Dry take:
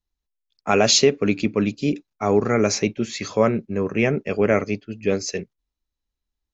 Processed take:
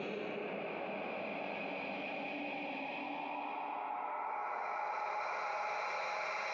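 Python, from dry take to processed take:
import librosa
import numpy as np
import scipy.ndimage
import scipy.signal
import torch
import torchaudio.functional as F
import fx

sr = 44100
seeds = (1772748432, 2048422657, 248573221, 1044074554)

y = fx.octave_divider(x, sr, octaves=2, level_db=-2.0)
y = fx.dynamic_eq(y, sr, hz=1800.0, q=1.2, threshold_db=-34.0, ratio=4.0, max_db=-5)
y = fx.level_steps(y, sr, step_db=16)
y = fx.auto_swell(y, sr, attack_ms=276.0)
y = fx.filter_sweep_highpass(y, sr, from_hz=340.0, to_hz=1700.0, start_s=0.2, end_s=3.91, q=3.7)
y = fx.env_flanger(y, sr, rest_ms=7.2, full_db=-27.5)
y = fx.chopper(y, sr, hz=8.7, depth_pct=65, duty_pct=20)
y = fx.paulstretch(y, sr, seeds[0], factor=4.5, window_s=1.0, from_s=1.34)
y = fx.cabinet(y, sr, low_hz=110.0, low_slope=24, high_hz=3200.0, hz=(170.0, 310.0, 460.0, 820.0, 2200.0), db=(7, -5, -8, 9, 6))
y = fx.env_flatten(y, sr, amount_pct=70)
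y = y * librosa.db_to_amplitude(4.5)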